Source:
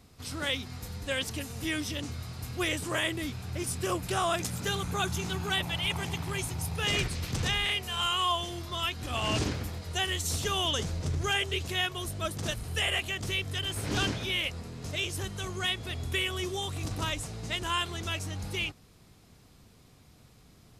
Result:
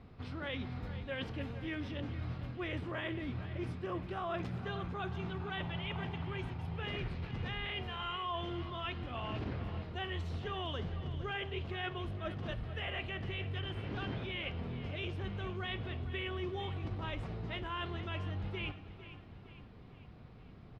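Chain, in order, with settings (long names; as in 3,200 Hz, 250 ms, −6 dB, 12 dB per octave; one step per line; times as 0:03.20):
high-frequency loss of the air 380 metres
reversed playback
downward compressor 6 to 1, threshold −40 dBFS, peak gain reduction 12.5 dB
reversed playback
high-shelf EQ 6,400 Hz −8 dB
repeating echo 456 ms, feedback 49%, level −13.5 dB
on a send at −12.5 dB: convolution reverb, pre-delay 3 ms
on the sum: level +3.5 dB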